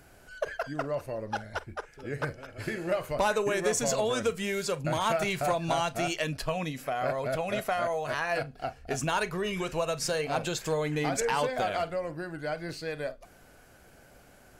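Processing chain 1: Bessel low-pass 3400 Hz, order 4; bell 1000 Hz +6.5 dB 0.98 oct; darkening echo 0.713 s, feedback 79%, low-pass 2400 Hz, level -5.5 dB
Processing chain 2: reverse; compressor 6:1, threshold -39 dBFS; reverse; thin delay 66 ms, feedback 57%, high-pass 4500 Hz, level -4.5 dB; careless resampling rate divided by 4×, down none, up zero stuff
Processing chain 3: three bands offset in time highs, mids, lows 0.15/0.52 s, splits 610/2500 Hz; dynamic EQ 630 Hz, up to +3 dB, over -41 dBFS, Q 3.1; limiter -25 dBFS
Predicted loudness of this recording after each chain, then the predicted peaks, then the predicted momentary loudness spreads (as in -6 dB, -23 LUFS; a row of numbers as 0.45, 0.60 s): -27.5, -33.5, -35.0 LUFS; -11.0, -15.0, -25.0 dBFS; 9, 6, 6 LU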